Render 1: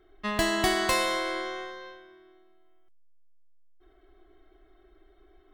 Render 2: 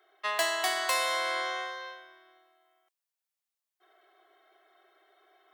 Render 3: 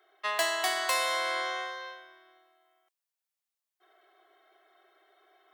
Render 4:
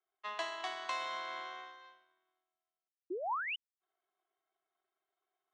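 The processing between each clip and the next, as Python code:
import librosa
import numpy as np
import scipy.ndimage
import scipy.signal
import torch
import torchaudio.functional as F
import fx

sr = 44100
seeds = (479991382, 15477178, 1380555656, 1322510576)

y1 = fx.rider(x, sr, range_db=4, speed_s=0.5)
y1 = scipy.signal.sosfilt(scipy.signal.butter(4, 560.0, 'highpass', fs=sr, output='sos'), y1)
y1 = fx.high_shelf(y1, sr, hz=8900.0, db=3.5)
y2 = y1
y3 = fx.power_curve(y2, sr, exponent=1.4)
y3 = fx.spec_paint(y3, sr, seeds[0], shape='rise', start_s=3.1, length_s=0.46, low_hz=330.0, high_hz=3100.0, level_db=-31.0)
y3 = fx.cabinet(y3, sr, low_hz=210.0, low_slope=24, high_hz=5500.0, hz=(530.0, 980.0, 1800.0, 4800.0), db=(-6, 4, -4, -9))
y3 = F.gain(torch.from_numpy(y3), -5.5).numpy()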